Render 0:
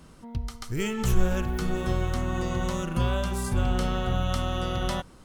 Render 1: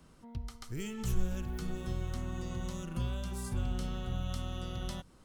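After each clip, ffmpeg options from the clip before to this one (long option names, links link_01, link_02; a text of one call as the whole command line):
ffmpeg -i in.wav -filter_complex "[0:a]acrossover=split=300|3000[link_01][link_02][link_03];[link_02]acompressor=threshold=-38dB:ratio=6[link_04];[link_01][link_04][link_03]amix=inputs=3:normalize=0,volume=-8.5dB" out.wav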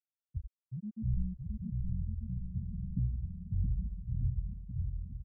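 ffmpeg -i in.wav -af "highpass=frequency=49:poles=1,afftfilt=real='re*gte(hypot(re,im),0.112)':imag='im*gte(hypot(re,im),0.112)':win_size=1024:overlap=0.75,aecho=1:1:670|1240|1724|2135|2485:0.631|0.398|0.251|0.158|0.1,volume=4.5dB" out.wav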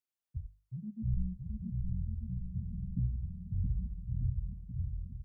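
ffmpeg -i in.wav -af "bandreject=frequency=50:width_type=h:width=6,bandreject=frequency=100:width_type=h:width=6,bandreject=frequency=150:width_type=h:width=6,bandreject=frequency=200:width_type=h:width=6" out.wav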